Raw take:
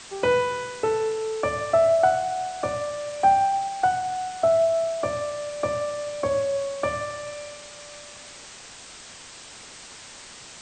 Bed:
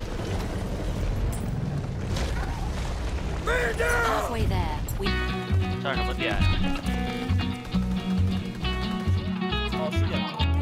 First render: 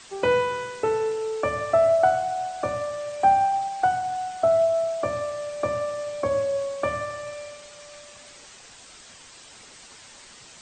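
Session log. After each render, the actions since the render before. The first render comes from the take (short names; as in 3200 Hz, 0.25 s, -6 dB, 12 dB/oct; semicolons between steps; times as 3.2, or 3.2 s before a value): denoiser 6 dB, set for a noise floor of -44 dBFS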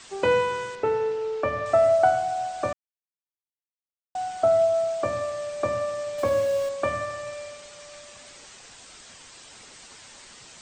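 0.75–1.66 air absorption 150 m; 2.73–4.15 mute; 6.18–6.69 zero-crossing step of -33 dBFS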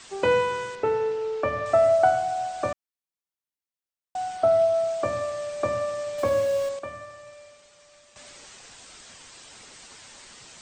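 4.36–4.83 bell 7200 Hz -14 dB -> -5.5 dB 0.27 oct; 6.79–8.16 gain -10.5 dB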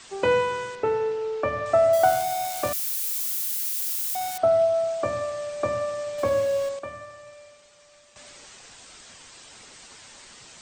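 1.93–4.38 switching spikes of -21 dBFS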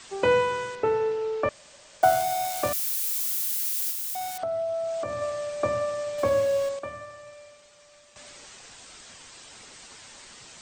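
1.49–2.03 room tone; 3.9–5.22 compressor, threshold -27 dBFS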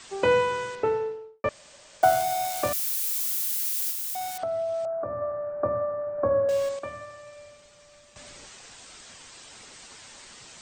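0.77–1.44 studio fade out; 4.85–6.49 elliptic low-pass 1500 Hz, stop band 70 dB; 7.36–8.48 low shelf 230 Hz +8.5 dB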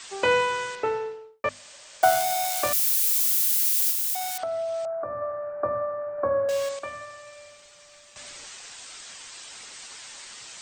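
tilt shelf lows -5.5 dB, about 710 Hz; notches 50/100/150/200/250 Hz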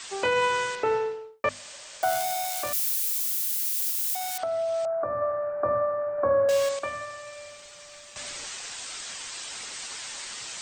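limiter -18 dBFS, peak gain reduction 10 dB; vocal rider within 5 dB 2 s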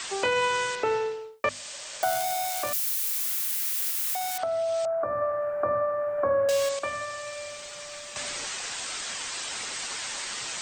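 three-band squash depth 40%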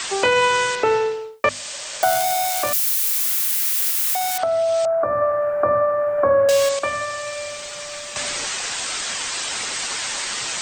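gain +8 dB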